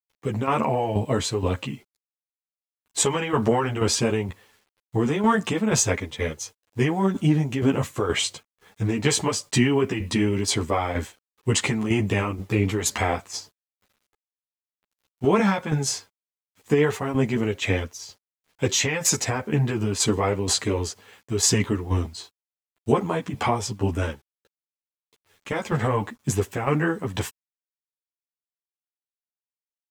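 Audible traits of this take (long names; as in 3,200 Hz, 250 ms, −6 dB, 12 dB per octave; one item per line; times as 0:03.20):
tremolo saw down 2.1 Hz, depth 65%
a quantiser's noise floor 10 bits, dither none
a shimmering, thickened sound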